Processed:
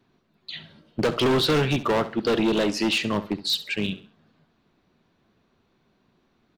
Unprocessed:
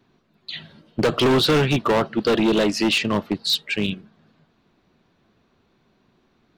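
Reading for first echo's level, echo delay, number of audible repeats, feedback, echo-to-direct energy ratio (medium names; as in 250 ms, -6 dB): -15.0 dB, 67 ms, 3, 34%, -14.5 dB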